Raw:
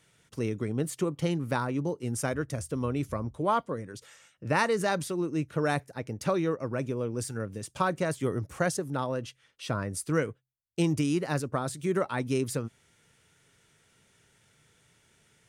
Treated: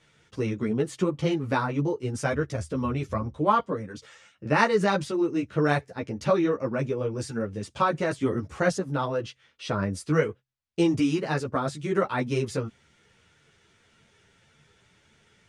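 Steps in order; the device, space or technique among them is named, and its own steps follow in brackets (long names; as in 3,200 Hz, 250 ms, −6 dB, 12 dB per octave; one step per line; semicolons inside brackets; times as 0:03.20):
string-machine ensemble chorus (string-ensemble chorus; low-pass filter 5,500 Hz 12 dB per octave)
level +7 dB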